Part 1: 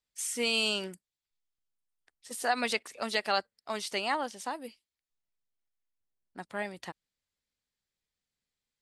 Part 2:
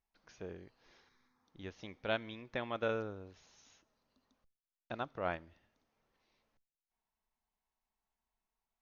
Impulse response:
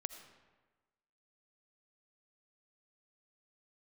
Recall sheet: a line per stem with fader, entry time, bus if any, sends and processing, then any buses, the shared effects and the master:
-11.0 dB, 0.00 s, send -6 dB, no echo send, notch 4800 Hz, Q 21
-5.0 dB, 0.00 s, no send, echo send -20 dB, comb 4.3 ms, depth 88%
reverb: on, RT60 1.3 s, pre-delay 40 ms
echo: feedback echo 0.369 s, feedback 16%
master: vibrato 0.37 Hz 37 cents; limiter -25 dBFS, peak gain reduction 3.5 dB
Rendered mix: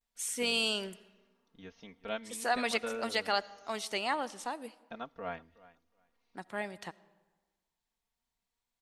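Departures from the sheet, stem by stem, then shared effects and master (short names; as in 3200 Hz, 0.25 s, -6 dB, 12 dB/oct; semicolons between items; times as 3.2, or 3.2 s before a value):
stem 1 -11.0 dB -> -4.5 dB; master: missing limiter -25 dBFS, peak gain reduction 3.5 dB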